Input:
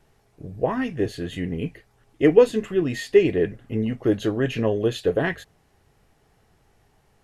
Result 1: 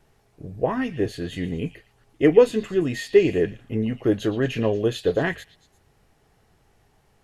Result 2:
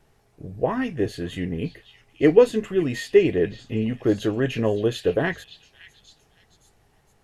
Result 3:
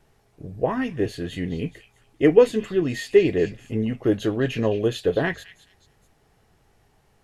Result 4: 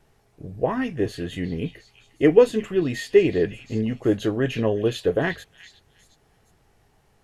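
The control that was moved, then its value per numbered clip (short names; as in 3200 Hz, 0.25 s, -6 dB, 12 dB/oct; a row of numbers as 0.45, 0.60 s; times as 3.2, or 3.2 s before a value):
delay with a stepping band-pass, time: 0.115, 0.564, 0.213, 0.358 s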